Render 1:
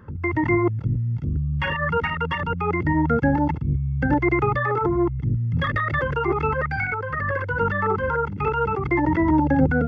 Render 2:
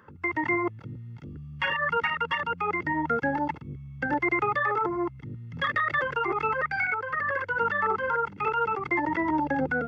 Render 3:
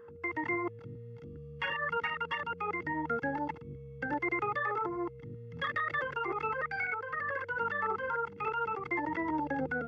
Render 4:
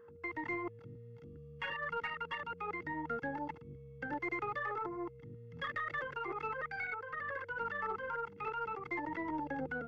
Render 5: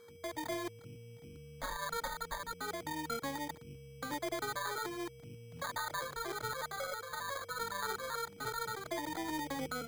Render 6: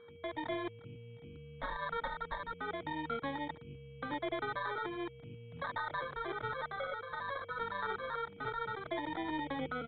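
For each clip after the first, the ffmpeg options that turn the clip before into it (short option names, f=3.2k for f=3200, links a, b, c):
-af "highpass=f=830:p=1"
-af "aeval=exprs='val(0)+0.00794*sin(2*PI*470*n/s)':c=same,volume=-7dB"
-af "aeval=exprs='0.0841*(cos(1*acos(clip(val(0)/0.0841,-1,1)))-cos(1*PI/2))+0.00211*(cos(4*acos(clip(val(0)/0.0841,-1,1)))-cos(4*PI/2))':c=same,volume=-5.5dB"
-af "acrusher=samples=16:mix=1:aa=0.000001"
-af "aresample=8000,aresample=44100,volume=1dB"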